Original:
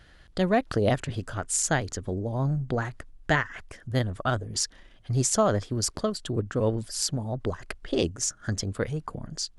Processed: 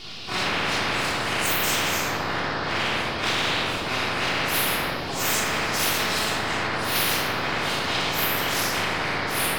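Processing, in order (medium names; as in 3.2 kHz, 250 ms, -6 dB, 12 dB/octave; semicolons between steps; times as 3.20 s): phase randomisation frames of 200 ms; compression, threshold -27 dBFS, peak gain reduction 10.5 dB; high-pass 450 Hz 12 dB/octave; peaking EQ 3.3 kHz -4 dB; full-wave rectifier; treble shelf 4.6 kHz -10.5 dB; band noise 2.5–5.1 kHz -63 dBFS; reverberation RT60 1.6 s, pre-delay 3 ms, DRR -4.5 dB; loudness maximiser +13 dB; spectrum-flattening compressor 10:1; trim -8 dB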